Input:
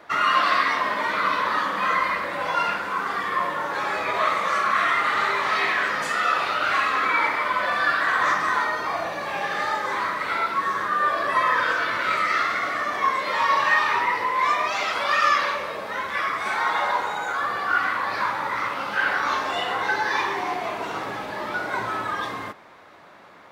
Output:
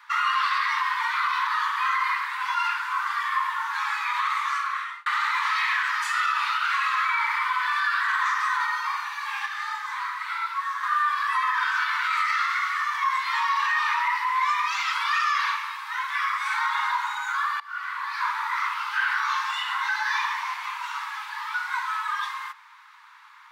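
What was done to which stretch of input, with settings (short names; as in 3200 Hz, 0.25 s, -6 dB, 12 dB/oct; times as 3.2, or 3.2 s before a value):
4.29–5.06 fade out
9.46–10.83 gain -4.5 dB
17.6–18.39 fade in, from -22 dB
whole clip: limiter -15 dBFS; steep high-pass 890 Hz 96 dB/oct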